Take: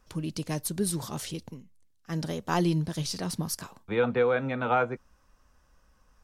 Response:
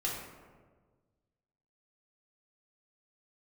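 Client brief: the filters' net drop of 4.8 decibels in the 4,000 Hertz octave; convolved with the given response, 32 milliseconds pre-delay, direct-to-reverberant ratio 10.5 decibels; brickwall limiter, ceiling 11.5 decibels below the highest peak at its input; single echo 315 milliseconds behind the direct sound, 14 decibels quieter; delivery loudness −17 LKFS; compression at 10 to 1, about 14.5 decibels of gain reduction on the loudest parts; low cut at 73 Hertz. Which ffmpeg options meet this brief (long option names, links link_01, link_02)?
-filter_complex "[0:a]highpass=73,equalizer=frequency=4000:width_type=o:gain=-6.5,acompressor=threshold=-35dB:ratio=10,alimiter=level_in=11.5dB:limit=-24dB:level=0:latency=1,volume=-11.5dB,aecho=1:1:315:0.2,asplit=2[link_01][link_02];[1:a]atrim=start_sample=2205,adelay=32[link_03];[link_02][link_03]afir=irnorm=-1:irlink=0,volume=-15dB[link_04];[link_01][link_04]amix=inputs=2:normalize=0,volume=27dB"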